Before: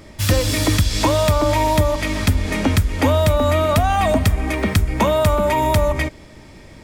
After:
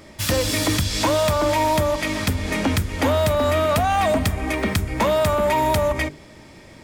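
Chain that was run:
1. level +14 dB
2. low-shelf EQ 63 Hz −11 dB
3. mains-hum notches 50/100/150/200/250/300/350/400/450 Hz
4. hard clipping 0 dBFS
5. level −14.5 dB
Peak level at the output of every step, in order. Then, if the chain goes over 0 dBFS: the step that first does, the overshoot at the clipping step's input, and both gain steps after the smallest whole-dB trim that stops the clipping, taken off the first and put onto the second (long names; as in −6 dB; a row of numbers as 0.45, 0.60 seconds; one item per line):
+6.5, +8.0, +8.0, 0.0, −14.5 dBFS
step 1, 8.0 dB
step 1 +6 dB, step 5 −6.5 dB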